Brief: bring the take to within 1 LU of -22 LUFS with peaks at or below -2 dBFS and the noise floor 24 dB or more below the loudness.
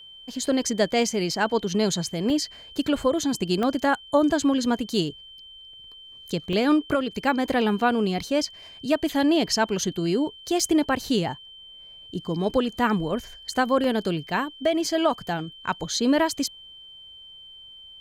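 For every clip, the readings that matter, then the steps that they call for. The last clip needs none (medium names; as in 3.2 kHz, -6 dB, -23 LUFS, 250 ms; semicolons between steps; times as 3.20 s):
dropouts 6; longest dropout 1.8 ms; steady tone 3.1 kHz; tone level -43 dBFS; loudness -24.5 LUFS; peak level -10.0 dBFS; loudness target -22.0 LUFS
-> interpolate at 2.30/3.63/6.53/10.60/13.84/16.19 s, 1.8 ms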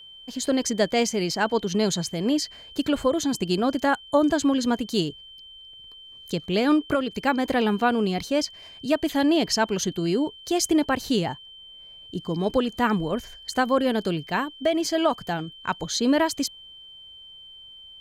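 dropouts 0; steady tone 3.1 kHz; tone level -43 dBFS
-> band-stop 3.1 kHz, Q 30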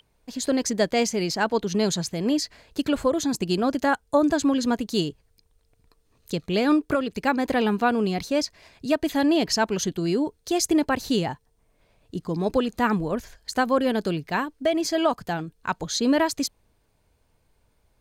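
steady tone not found; loudness -24.5 LUFS; peak level -10.0 dBFS; loudness target -22.0 LUFS
-> trim +2.5 dB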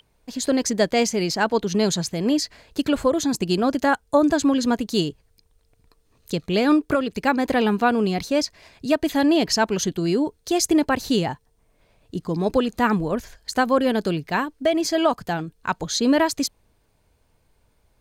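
loudness -22.0 LUFS; peak level -7.5 dBFS; noise floor -65 dBFS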